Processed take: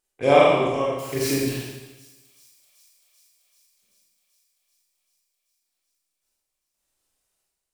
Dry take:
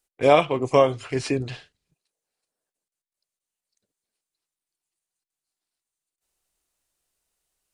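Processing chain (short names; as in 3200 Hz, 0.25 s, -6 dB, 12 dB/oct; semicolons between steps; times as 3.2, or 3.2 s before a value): 0.98–1.49 switching spikes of -24 dBFS; chopper 0.89 Hz, depth 65%, duty 60%; wow and flutter 16 cents; thin delay 0.386 s, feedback 75%, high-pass 5500 Hz, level -19 dB; Schroeder reverb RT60 1.1 s, combs from 29 ms, DRR -5 dB; gain -4 dB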